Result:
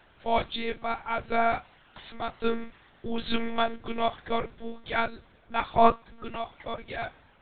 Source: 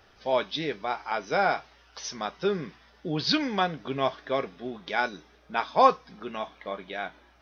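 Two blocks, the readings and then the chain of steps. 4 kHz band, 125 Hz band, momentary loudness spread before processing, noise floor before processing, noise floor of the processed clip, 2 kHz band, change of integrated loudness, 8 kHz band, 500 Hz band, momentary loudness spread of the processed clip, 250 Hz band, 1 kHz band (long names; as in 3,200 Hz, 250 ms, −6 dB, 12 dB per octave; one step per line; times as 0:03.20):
−4.0 dB, −4.0 dB, 15 LU, −59 dBFS, −59 dBFS, −2.5 dB, −1.0 dB, can't be measured, −0.5 dB, 15 LU, −1.0 dB, −1.5 dB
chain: one-pitch LPC vocoder at 8 kHz 230 Hz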